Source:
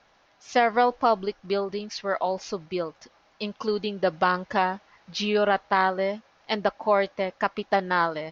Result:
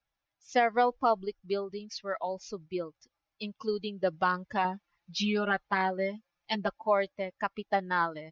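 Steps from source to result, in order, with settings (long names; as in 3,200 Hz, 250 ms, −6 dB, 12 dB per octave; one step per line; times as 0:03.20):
spectral dynamics exaggerated over time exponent 1.5
0:04.64–0:06.82: comb filter 5.7 ms, depth 78%
level −3 dB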